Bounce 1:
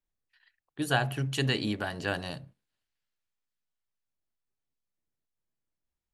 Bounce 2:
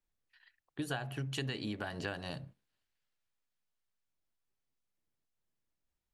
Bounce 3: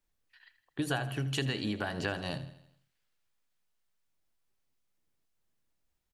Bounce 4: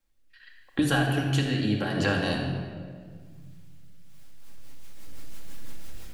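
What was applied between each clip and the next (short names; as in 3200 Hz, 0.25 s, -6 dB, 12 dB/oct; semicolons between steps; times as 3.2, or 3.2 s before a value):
high shelf 8200 Hz -6 dB; compressor 6:1, threshold -36 dBFS, peak gain reduction 15 dB; gain +1 dB
feedback echo 81 ms, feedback 53%, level -15 dB; gain +5 dB
recorder AGC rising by 10 dB/s; rotary speaker horn 0.8 Hz, later 6 Hz, at 3.81; shoebox room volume 2600 m³, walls mixed, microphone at 2.2 m; gain +5.5 dB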